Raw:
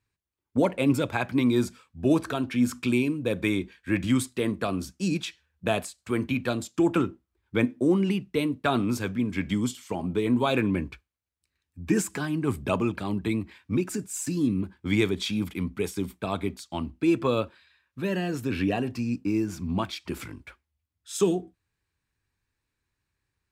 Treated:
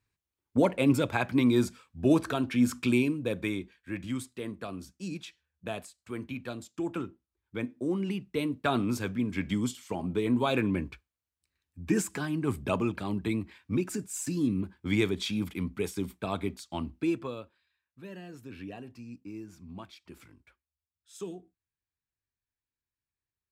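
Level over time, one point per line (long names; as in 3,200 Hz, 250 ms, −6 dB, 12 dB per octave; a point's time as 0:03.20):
0:03.01 −1 dB
0:03.89 −10.5 dB
0:07.60 −10.5 dB
0:08.60 −3 dB
0:16.99 −3 dB
0:17.40 −16 dB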